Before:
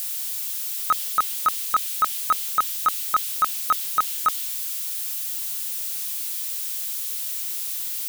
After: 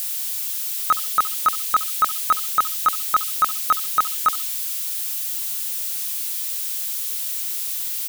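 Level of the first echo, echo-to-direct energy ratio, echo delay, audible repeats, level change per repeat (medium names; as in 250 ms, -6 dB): -18.0 dB, -18.0 dB, 68 ms, 2, -13.0 dB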